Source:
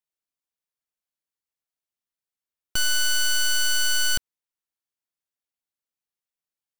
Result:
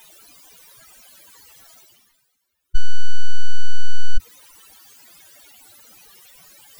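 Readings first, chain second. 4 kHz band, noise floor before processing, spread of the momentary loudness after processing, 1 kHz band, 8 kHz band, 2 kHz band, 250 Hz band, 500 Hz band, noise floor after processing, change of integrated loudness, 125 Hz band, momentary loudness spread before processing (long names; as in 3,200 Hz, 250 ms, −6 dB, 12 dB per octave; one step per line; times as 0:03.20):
−13.0 dB, below −85 dBFS, 10 LU, −8.5 dB, −17.0 dB, −10.5 dB, can't be measured, −9.5 dB, −72 dBFS, −17.5 dB, +16.0 dB, 5 LU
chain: expanding power law on the bin magnitudes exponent 3.5
reversed playback
upward compression, threshold −44 dBFS
reversed playback
level +18 dB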